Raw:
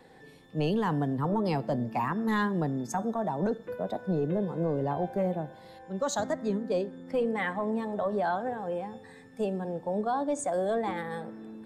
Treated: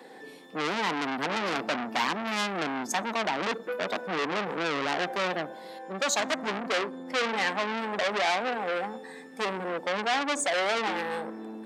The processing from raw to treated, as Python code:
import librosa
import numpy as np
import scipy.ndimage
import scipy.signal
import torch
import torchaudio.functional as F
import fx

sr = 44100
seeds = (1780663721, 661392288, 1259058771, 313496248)

y = scipy.signal.sosfilt(scipy.signal.butter(4, 230.0, 'highpass', fs=sr, output='sos'), x)
y = fx.transformer_sat(y, sr, knee_hz=3700.0)
y = F.gain(torch.from_numpy(y), 7.5).numpy()